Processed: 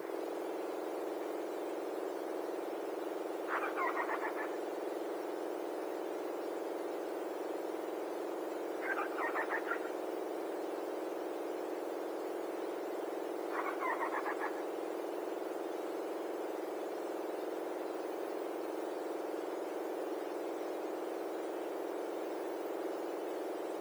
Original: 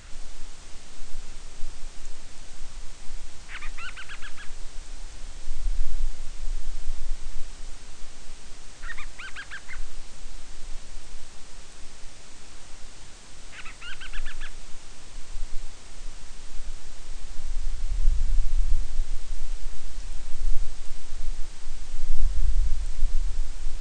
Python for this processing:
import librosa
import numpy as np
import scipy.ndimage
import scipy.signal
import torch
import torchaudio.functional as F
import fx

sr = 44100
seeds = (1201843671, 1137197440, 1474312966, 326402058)

p1 = fx.octave_mirror(x, sr, pivot_hz=1700.0)
p2 = scipy.signal.sosfilt(scipy.signal.butter(4, 150.0, 'highpass', fs=sr, output='sos'), p1)
p3 = fx.high_shelf(p2, sr, hz=2400.0, db=-8.0)
p4 = fx.quant_dither(p3, sr, seeds[0], bits=12, dither='triangular')
p5 = p4 + fx.echo_single(p4, sr, ms=138, db=-12.5, dry=0)
y = F.gain(torch.from_numpy(p5), 7.5).numpy()